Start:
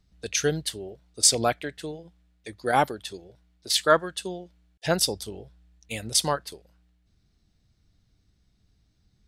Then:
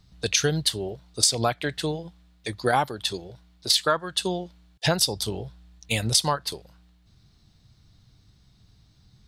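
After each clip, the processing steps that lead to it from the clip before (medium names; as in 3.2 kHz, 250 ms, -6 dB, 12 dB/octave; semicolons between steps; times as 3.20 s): graphic EQ 125/1000/4000 Hz +8/+7/+7 dB; compression 8:1, threshold -24 dBFS, peak gain reduction 15 dB; treble shelf 9 kHz +4 dB; trim +5 dB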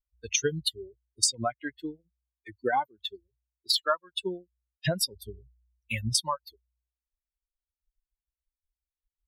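expander on every frequency bin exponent 3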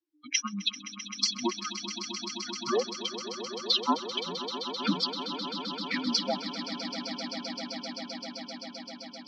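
frequency shift -360 Hz; Chebyshev band-pass 180–5800 Hz, order 5; echo with a slow build-up 130 ms, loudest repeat 8, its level -13.5 dB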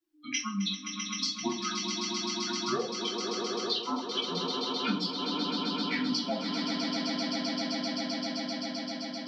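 compression 6:1, threshold -34 dBFS, peak gain reduction 13 dB; simulated room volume 270 m³, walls furnished, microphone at 3.1 m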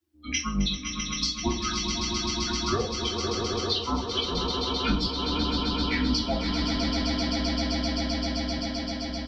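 octave divider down 2 oct, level 0 dB; delay 507 ms -12 dB; trim +3.5 dB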